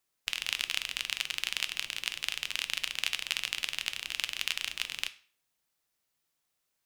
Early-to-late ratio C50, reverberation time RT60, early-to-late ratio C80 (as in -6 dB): 17.0 dB, 0.45 s, 21.5 dB